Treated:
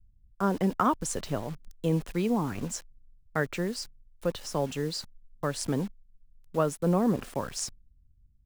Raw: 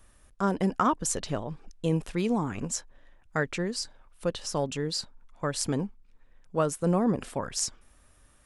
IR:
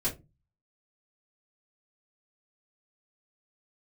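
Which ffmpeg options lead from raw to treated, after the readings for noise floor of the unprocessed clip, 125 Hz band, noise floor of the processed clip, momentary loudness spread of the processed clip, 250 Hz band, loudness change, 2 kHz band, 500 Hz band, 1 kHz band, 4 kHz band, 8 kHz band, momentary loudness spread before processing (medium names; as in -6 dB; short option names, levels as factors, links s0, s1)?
-61 dBFS, 0.0 dB, -62 dBFS, 11 LU, 0.0 dB, -0.5 dB, -1.0 dB, 0.0 dB, -0.5 dB, -3.5 dB, -4.0 dB, 9 LU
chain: -filter_complex "[0:a]highshelf=f=2900:g=-5,acrossover=split=180[s0][s1];[s1]acrusher=bits=7:mix=0:aa=0.000001[s2];[s0][s2]amix=inputs=2:normalize=0"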